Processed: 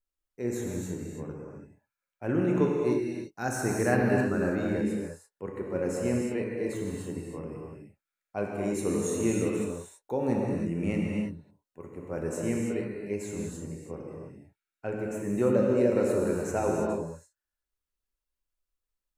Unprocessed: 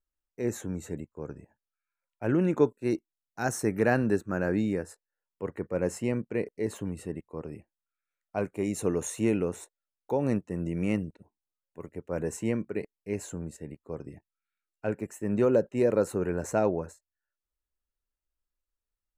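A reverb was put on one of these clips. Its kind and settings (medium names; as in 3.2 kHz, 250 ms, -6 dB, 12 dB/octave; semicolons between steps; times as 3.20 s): gated-style reverb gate 360 ms flat, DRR -2 dB; trim -3.5 dB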